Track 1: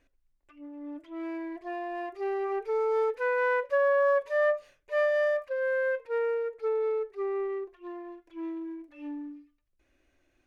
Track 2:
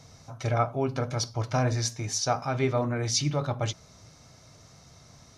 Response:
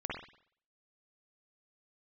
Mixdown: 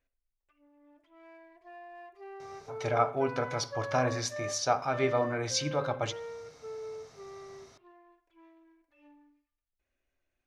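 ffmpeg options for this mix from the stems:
-filter_complex "[0:a]equalizer=f=310:t=o:w=0.33:g=-12,volume=0.2,asplit=2[s0][s1];[s1]volume=0.266[s2];[1:a]bass=f=250:g=-10,treble=f=4000:g=-6,adelay=2400,volume=0.944,asplit=2[s3][s4];[s4]volume=0.133[s5];[2:a]atrim=start_sample=2205[s6];[s2][s5]amix=inputs=2:normalize=0[s7];[s7][s6]afir=irnorm=-1:irlink=0[s8];[s0][s3][s8]amix=inputs=3:normalize=0"

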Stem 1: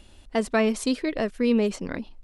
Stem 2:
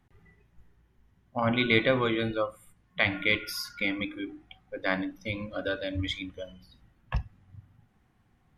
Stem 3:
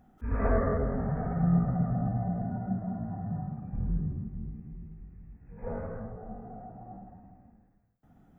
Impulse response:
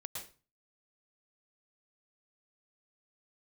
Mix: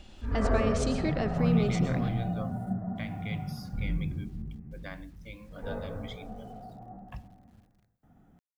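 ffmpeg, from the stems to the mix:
-filter_complex "[0:a]lowpass=f=7200:w=0.5412,lowpass=f=7200:w=1.3066,alimiter=limit=0.075:level=0:latency=1:release=136,volume=0.75,asplit=2[s0][s1];[s1]volume=0.668[s2];[1:a]alimiter=limit=0.158:level=0:latency=1:release=494,acrusher=bits=8:mix=0:aa=0.000001,volume=0.224[s3];[2:a]volume=0.841,asplit=2[s4][s5];[s5]volume=0.2[s6];[3:a]atrim=start_sample=2205[s7];[s2][s6]amix=inputs=2:normalize=0[s8];[s8][s7]afir=irnorm=-1:irlink=0[s9];[s0][s3][s4][s9]amix=inputs=4:normalize=0"

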